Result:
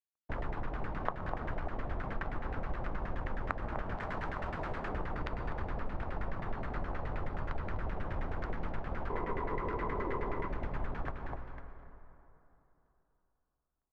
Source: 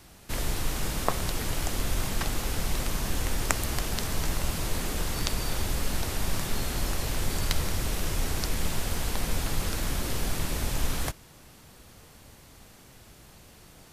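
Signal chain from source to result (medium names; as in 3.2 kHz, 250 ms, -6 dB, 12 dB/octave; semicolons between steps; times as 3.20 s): crossover distortion -40 dBFS; treble shelf 7.3 kHz -10.5 dB; feedback delay 250 ms, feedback 26%, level -8.5 dB; LFO low-pass saw down 9.5 Hz 630–1900 Hz; 3.97–4.89 s: tilt EQ +1.5 dB/octave; 9.10–10.48 s: small resonant body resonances 410/1000/2000 Hz, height 14 dB, ringing for 25 ms; on a send at -15 dB: reverberation RT60 3.3 s, pre-delay 107 ms; on the sum: compression 3:1, threshold -34 dBFS, peak gain reduction 13.5 dB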